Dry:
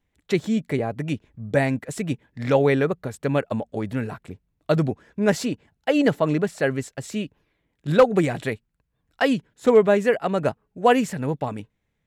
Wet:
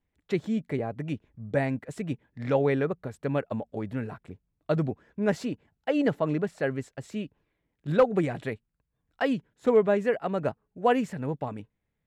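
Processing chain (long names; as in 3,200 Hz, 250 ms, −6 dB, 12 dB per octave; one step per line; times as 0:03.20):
high-shelf EQ 3,800 Hz −10 dB
level −5.5 dB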